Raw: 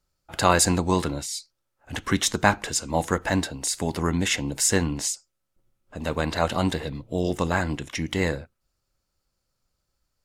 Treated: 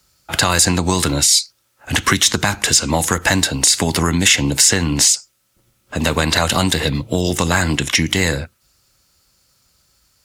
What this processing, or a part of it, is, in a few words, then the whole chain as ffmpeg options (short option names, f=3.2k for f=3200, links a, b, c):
mastering chain: -filter_complex "[0:a]highpass=54,equalizer=f=610:t=o:w=2:g=-3.5,acrossover=split=130|5200[a][b][c];[a]acompressor=threshold=-36dB:ratio=4[d];[b]acompressor=threshold=-29dB:ratio=4[e];[c]acompressor=threshold=-35dB:ratio=4[f];[d][e][f]amix=inputs=3:normalize=0,acompressor=threshold=-28dB:ratio=3,asoftclip=type=tanh:threshold=-17.5dB,tiltshelf=f=1.5k:g=-3.5,alimiter=level_in=20dB:limit=-1dB:release=50:level=0:latency=1,volume=-1dB"